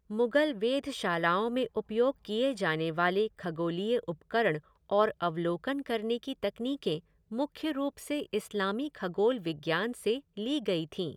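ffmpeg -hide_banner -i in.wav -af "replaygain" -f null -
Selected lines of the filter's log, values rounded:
track_gain = +10.8 dB
track_peak = 0.159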